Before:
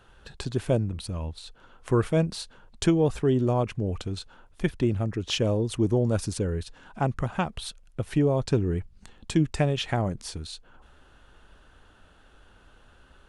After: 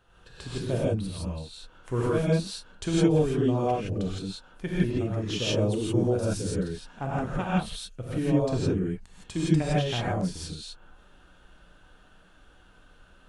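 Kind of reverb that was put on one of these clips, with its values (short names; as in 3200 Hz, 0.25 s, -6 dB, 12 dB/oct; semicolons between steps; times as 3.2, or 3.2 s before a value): non-linear reverb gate 0.19 s rising, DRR -7 dB; gain -8.5 dB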